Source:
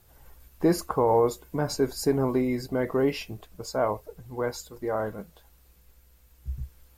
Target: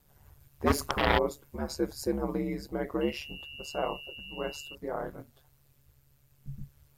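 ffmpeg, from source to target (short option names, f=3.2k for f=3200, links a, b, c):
-filter_complex "[0:a]asplit=3[a][b][c];[a]afade=t=out:st=0.66:d=0.02[d];[b]aeval=exprs='0.299*(cos(1*acos(clip(val(0)/0.299,-1,1)))-cos(1*PI/2))+0.0841*(cos(4*acos(clip(val(0)/0.299,-1,1)))-cos(4*PI/2))+0.15*(cos(7*acos(clip(val(0)/0.299,-1,1)))-cos(7*PI/2))':c=same,afade=t=in:st=0.66:d=0.02,afade=t=out:st=1.17:d=0.02[e];[c]afade=t=in:st=1.17:d=0.02[f];[d][e][f]amix=inputs=3:normalize=0,asettb=1/sr,asplit=3[g][h][i];[g]atrim=end=3.014[j];[h]atrim=start=3.01:end=4.75,asetpts=PTS-STARTPTS,afade=t=in:d=0.004:c=qsin,afade=t=out:st=1.736:d=0.004:c=qsin,aeval=exprs='val(0)+0.0158*sin(2*PI*2800*n/s)':c=same[k];[i]atrim=start=4.746[l];[j][k]acrossfade=d=0.004:c1=hsin:c2=qsin[m];[m][l]acrossfade=d=0.004:c1=qsin:c2=hsin,aeval=exprs='val(0)*sin(2*PI*72*n/s)':c=same,volume=-3.5dB"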